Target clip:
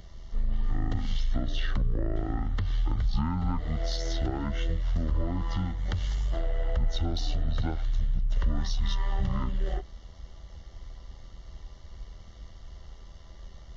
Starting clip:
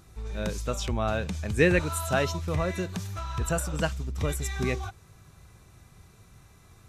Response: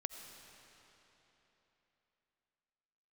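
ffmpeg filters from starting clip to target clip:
-filter_complex "[0:a]tremolo=f=160:d=0.519,asetrate=22050,aresample=44100,asuperstop=centerf=2500:order=8:qfactor=5.9,asplit=2[a][b];[b]asoftclip=type=tanh:threshold=-21.5dB,volume=-3dB[c];[a][c]amix=inputs=2:normalize=0,acompressor=threshold=-30dB:ratio=4,lowshelf=f=71:g=11.5,acrossover=split=220[d][e];[e]acompressor=threshold=-35dB:ratio=1.5[f];[d][f]amix=inputs=2:normalize=0"

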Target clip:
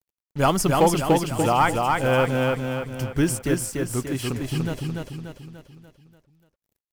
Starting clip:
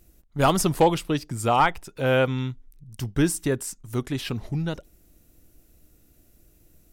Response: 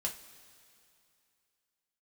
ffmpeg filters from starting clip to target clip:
-filter_complex "[0:a]bandreject=f=3.7k:w=5.9,acrusher=bits=6:mix=0:aa=0.5,asplit=2[a][b];[b]aecho=0:1:292|584|876|1168|1460|1752:0.708|0.347|0.17|0.0833|0.0408|0.02[c];[a][c]amix=inputs=2:normalize=0"

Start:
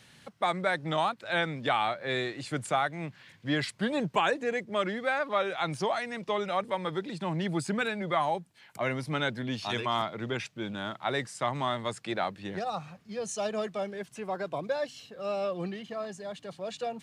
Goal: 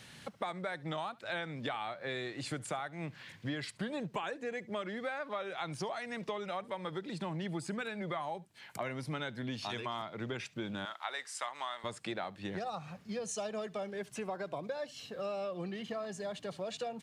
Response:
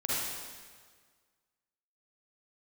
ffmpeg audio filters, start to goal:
-filter_complex "[0:a]asettb=1/sr,asplit=3[a][b][c];[a]atrim=end=10.854[d];[b]atrim=start=10.85:end=11.84,asetpts=PTS-STARTPTS,afade=t=in:d=0.004:c=qsin,afade=t=out:st=0.986:d=0.004:c=qsin,highpass=900[e];[c]atrim=start=11.836[f];[d][e]acrossfade=d=0.004:c1=hsin:c2=qsin[g];[g][f]acrossfade=d=0.004:c1=qsin:c2=hsin,acompressor=threshold=-39dB:ratio=6,asplit=2[h][i];[i]aecho=0:1:72:0.0708[j];[h][j]amix=inputs=2:normalize=0,volume=3dB"

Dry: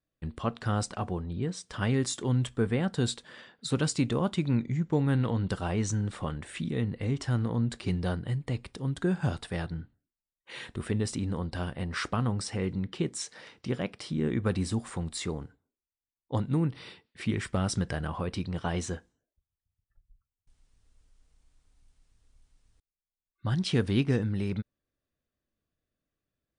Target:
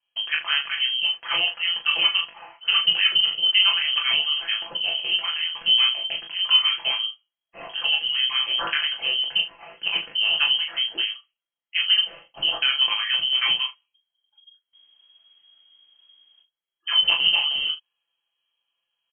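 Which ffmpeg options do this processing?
-filter_complex "[0:a]asetrate=61299,aresample=44100,lowpass=f=2.8k:t=q:w=0.5098,lowpass=f=2.8k:t=q:w=0.6013,lowpass=f=2.8k:t=q:w=0.9,lowpass=f=2.8k:t=q:w=2.563,afreqshift=-3300,aecho=1:1:5.9:0.71,asplit=2[a][b];[b]aecho=0:1:21|39|75:0.631|0.562|0.2[c];[a][c]amix=inputs=2:normalize=0,volume=4dB"

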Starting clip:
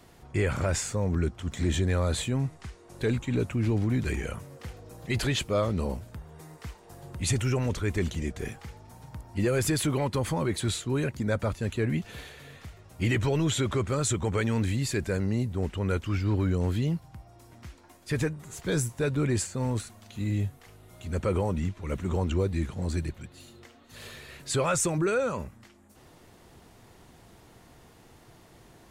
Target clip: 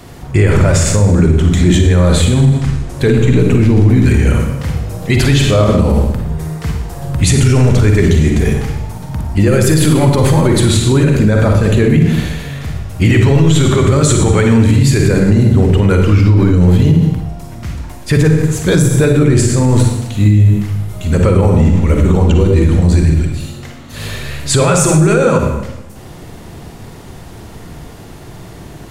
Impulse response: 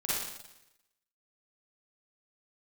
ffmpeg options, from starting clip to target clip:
-filter_complex "[0:a]asplit=2[a][b];[1:a]atrim=start_sample=2205,lowshelf=f=290:g=11.5[c];[b][c]afir=irnorm=-1:irlink=0,volume=-7dB[d];[a][d]amix=inputs=2:normalize=0,alimiter=level_in=15dB:limit=-1dB:release=50:level=0:latency=1,volume=-1dB"

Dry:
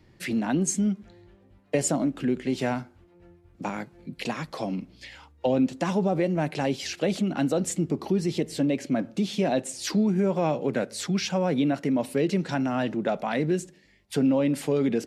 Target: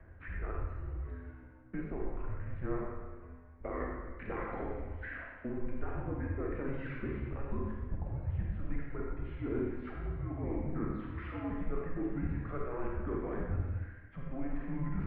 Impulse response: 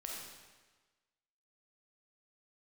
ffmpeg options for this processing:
-filter_complex "[0:a]aphaser=in_gain=1:out_gain=1:delay=1.8:decay=0.33:speed=0.37:type=triangular,areverse,acompressor=threshold=-38dB:ratio=6,areverse,equalizer=f=300:t=o:w=0.72:g=5,asplit=2[a][b];[b]asoftclip=type=tanh:threshold=-39.5dB,volume=-6dB[c];[a][c]amix=inputs=2:normalize=0[d];[1:a]atrim=start_sample=2205[e];[d][e]afir=irnorm=-1:irlink=0,highpass=f=250:t=q:w=0.5412,highpass=f=250:t=q:w=1.307,lowpass=f=2.2k:t=q:w=0.5176,lowpass=f=2.2k:t=q:w=0.7071,lowpass=f=2.2k:t=q:w=1.932,afreqshift=-270,volume=4.5dB"

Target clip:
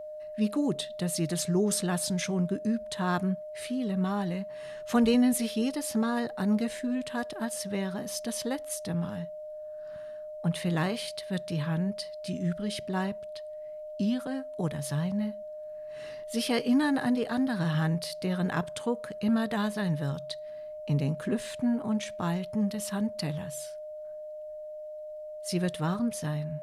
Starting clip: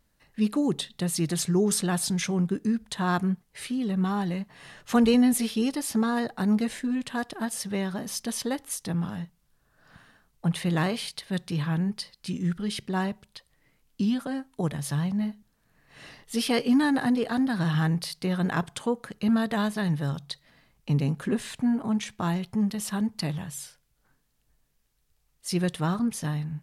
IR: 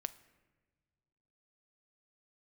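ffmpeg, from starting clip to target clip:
-af "aeval=exprs='val(0)+0.0178*sin(2*PI*610*n/s)':c=same,volume=-3dB"

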